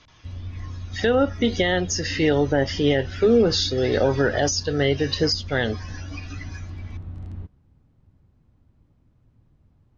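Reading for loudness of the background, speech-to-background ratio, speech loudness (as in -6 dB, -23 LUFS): -36.5 LUFS, 15.0 dB, -21.5 LUFS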